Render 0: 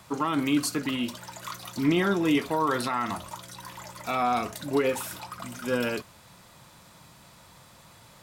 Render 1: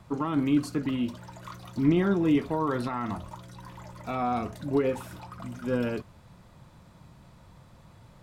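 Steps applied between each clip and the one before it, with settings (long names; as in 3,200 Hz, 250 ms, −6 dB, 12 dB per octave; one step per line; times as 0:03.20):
spectral tilt −3 dB per octave
level −4.5 dB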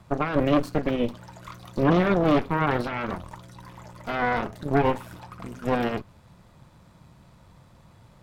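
harmonic generator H 6 −7 dB, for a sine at −12 dBFS
dynamic equaliser 8,300 Hz, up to −7 dB, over −51 dBFS, Q 0.72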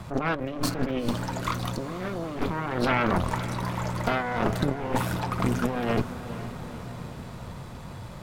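compressor whose output falls as the input rises −33 dBFS, ratio −1
feedback delay with all-pass diffusion 468 ms, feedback 62%, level −12.5 dB
level +5 dB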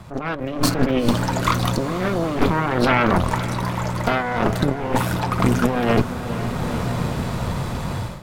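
automatic gain control gain up to 15.5 dB
level −1 dB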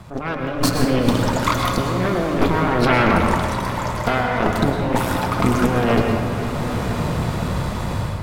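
convolution reverb RT60 1.4 s, pre-delay 101 ms, DRR 2.5 dB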